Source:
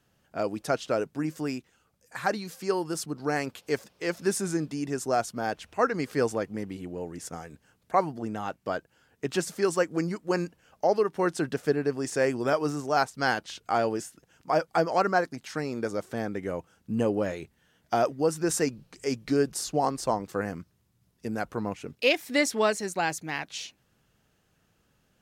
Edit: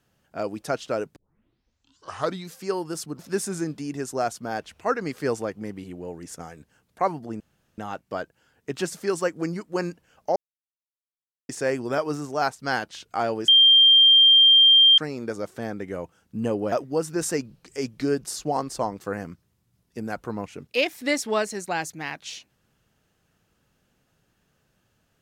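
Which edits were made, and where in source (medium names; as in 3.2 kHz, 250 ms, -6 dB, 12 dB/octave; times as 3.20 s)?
1.16 s: tape start 1.36 s
3.19–4.12 s: delete
8.33 s: insert room tone 0.38 s
10.91–12.04 s: mute
14.03–15.53 s: bleep 3.18 kHz -11 dBFS
17.27–18.00 s: delete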